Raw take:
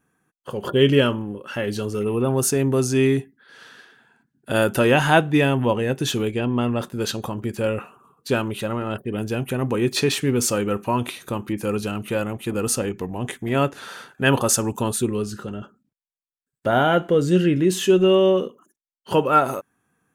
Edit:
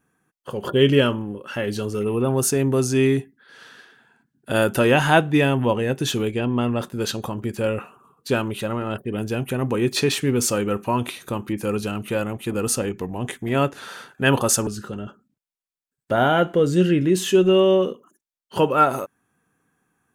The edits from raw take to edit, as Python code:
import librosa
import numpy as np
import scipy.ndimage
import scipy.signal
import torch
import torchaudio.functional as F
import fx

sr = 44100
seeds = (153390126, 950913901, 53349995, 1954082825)

y = fx.edit(x, sr, fx.cut(start_s=14.67, length_s=0.55), tone=tone)